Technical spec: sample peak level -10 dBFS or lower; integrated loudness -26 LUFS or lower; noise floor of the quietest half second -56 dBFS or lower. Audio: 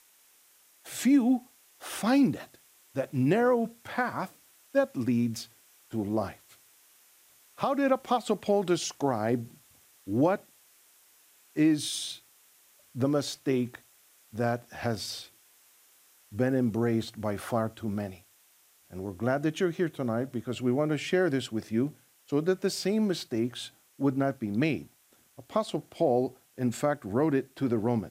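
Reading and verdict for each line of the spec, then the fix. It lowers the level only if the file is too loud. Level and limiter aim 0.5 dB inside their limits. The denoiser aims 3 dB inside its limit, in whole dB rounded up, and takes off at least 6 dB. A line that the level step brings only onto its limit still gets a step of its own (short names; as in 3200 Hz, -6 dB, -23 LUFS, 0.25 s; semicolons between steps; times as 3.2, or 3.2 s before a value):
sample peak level -12.5 dBFS: OK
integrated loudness -29.5 LUFS: OK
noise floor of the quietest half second -63 dBFS: OK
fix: none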